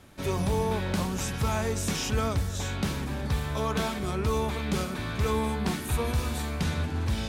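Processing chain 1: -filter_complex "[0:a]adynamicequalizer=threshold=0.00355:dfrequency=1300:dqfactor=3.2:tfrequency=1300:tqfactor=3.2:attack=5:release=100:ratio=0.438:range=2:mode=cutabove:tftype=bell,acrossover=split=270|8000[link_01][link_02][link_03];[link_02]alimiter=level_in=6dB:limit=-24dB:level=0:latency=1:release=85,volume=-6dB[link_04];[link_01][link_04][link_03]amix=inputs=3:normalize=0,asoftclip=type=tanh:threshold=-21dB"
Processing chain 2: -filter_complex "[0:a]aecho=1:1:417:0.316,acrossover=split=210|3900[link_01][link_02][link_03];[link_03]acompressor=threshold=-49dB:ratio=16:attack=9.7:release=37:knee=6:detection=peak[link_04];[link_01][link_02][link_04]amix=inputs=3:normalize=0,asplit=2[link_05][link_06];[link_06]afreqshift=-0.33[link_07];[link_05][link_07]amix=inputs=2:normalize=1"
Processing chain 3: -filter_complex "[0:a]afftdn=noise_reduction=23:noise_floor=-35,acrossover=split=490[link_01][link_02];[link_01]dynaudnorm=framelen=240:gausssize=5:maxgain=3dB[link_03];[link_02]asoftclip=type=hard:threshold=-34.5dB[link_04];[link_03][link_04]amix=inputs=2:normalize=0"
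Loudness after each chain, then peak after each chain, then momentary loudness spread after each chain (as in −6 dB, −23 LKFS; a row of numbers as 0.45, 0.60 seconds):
−32.0, −32.5, −28.0 LKFS; −22.0, −17.5, −15.0 dBFS; 2, 4, 3 LU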